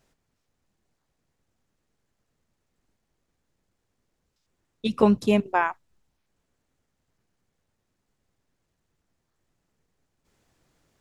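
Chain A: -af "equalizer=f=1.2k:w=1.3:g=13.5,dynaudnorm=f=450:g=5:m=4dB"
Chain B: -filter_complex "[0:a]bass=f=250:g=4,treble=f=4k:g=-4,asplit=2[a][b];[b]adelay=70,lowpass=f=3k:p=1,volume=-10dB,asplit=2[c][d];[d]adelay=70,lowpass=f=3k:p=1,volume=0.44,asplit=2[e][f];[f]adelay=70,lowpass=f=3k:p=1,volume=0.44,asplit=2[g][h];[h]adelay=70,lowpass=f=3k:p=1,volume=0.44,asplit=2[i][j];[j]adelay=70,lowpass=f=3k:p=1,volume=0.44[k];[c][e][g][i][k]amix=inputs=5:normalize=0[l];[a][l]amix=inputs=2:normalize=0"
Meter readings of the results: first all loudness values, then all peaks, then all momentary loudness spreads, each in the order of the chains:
-19.0, -22.0 LUFS; -1.5, -6.0 dBFS; 14, 11 LU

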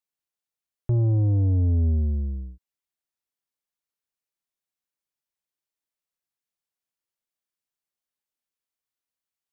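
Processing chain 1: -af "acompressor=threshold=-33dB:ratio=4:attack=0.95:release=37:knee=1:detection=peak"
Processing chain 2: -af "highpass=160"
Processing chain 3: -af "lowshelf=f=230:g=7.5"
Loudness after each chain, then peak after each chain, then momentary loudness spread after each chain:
-34.0, -30.5, -17.0 LUFS; -25.5, -20.0, -11.5 dBFS; 11, 16, 15 LU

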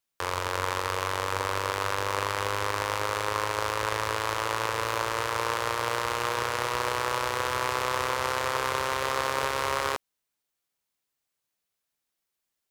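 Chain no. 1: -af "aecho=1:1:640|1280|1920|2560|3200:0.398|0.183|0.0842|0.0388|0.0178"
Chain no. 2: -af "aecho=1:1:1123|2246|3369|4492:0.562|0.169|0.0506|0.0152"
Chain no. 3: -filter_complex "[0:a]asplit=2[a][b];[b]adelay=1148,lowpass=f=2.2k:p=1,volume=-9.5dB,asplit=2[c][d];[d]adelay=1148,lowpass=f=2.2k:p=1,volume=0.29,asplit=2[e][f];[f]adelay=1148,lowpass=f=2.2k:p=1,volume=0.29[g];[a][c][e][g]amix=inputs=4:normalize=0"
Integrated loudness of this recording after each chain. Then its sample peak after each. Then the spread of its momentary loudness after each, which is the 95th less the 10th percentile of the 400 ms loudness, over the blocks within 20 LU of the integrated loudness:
-28.0, -27.5, -28.5 LUFS; -8.5, -7.5, -9.5 dBFS; 8, 9, 7 LU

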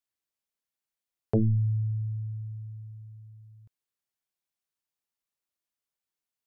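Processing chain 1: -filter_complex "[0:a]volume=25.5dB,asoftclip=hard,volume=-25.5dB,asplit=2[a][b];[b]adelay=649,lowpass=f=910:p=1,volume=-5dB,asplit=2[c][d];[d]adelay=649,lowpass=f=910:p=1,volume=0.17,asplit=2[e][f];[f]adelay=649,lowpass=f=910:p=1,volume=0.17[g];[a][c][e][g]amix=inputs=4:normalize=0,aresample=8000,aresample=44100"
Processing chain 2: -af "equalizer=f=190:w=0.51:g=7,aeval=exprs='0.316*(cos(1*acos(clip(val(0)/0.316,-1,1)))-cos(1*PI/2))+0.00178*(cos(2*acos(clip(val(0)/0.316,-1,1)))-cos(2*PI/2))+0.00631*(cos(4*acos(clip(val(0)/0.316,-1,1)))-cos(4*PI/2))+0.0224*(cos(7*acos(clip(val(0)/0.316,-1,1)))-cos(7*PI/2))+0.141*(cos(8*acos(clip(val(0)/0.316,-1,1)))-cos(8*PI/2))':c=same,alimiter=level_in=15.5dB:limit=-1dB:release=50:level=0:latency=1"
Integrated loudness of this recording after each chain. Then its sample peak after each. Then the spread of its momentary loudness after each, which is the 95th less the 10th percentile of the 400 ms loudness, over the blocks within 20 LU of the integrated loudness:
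-32.0, -13.5 LUFS; -22.5, -1.0 dBFS; 17, 17 LU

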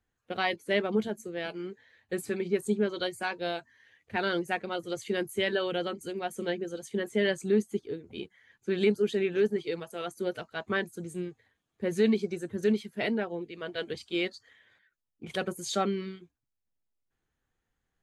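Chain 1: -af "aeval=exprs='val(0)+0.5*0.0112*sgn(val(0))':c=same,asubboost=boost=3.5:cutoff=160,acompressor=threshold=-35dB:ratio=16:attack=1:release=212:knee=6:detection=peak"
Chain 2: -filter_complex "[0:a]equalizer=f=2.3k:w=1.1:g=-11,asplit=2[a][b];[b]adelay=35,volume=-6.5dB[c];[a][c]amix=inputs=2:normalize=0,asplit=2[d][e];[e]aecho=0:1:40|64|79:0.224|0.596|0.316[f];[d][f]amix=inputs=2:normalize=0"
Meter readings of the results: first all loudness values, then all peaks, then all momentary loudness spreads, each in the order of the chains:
-42.0, -29.5 LUFS; -28.5, -12.0 dBFS; 3, 13 LU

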